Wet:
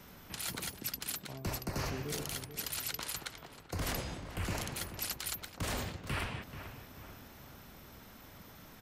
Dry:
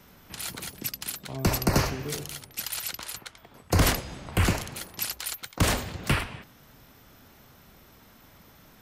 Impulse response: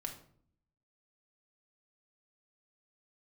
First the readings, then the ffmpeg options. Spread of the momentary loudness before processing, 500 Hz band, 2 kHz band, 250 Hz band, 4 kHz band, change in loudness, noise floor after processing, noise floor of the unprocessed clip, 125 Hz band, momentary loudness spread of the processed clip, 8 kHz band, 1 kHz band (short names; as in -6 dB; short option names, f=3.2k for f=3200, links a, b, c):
13 LU, -10.5 dB, -9.0 dB, -11.5 dB, -7.5 dB, -9.5 dB, -55 dBFS, -55 dBFS, -12.0 dB, 16 LU, -7.5 dB, -10.0 dB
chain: -filter_complex "[0:a]areverse,acompressor=threshold=-35dB:ratio=6,areverse,asplit=2[a][b];[b]adelay=435,lowpass=f=2.5k:p=1,volume=-10.5dB,asplit=2[c][d];[d]adelay=435,lowpass=f=2.5k:p=1,volume=0.51,asplit=2[e][f];[f]adelay=435,lowpass=f=2.5k:p=1,volume=0.51,asplit=2[g][h];[h]adelay=435,lowpass=f=2.5k:p=1,volume=0.51,asplit=2[i][j];[j]adelay=435,lowpass=f=2.5k:p=1,volume=0.51,asplit=2[k][l];[l]adelay=435,lowpass=f=2.5k:p=1,volume=0.51[m];[a][c][e][g][i][k][m]amix=inputs=7:normalize=0"